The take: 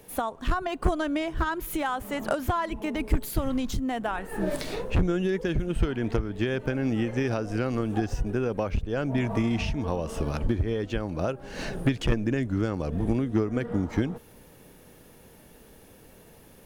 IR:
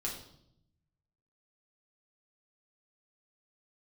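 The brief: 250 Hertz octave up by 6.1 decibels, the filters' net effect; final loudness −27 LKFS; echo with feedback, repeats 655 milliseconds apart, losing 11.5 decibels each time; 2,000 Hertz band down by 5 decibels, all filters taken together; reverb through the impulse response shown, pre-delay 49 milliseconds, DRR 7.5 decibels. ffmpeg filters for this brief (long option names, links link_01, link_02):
-filter_complex "[0:a]equalizer=frequency=250:width_type=o:gain=7.5,equalizer=frequency=2000:width_type=o:gain=-7,aecho=1:1:655|1310|1965:0.266|0.0718|0.0194,asplit=2[link_01][link_02];[1:a]atrim=start_sample=2205,adelay=49[link_03];[link_02][link_03]afir=irnorm=-1:irlink=0,volume=-9dB[link_04];[link_01][link_04]amix=inputs=2:normalize=0,volume=-3.5dB"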